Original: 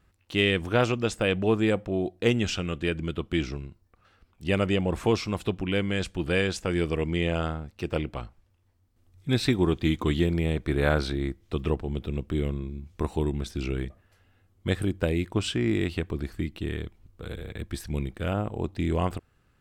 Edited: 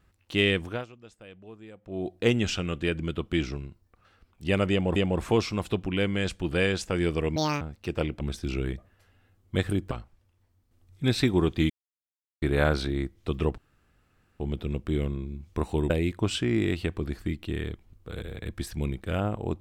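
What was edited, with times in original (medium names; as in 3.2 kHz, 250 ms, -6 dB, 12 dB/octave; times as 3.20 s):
0.52–2.15 s: dip -23 dB, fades 0.34 s
4.71–4.96 s: loop, 2 plays
7.11–7.56 s: speed 181%
9.95–10.67 s: mute
11.83 s: insert room tone 0.82 s
13.33–15.03 s: move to 8.16 s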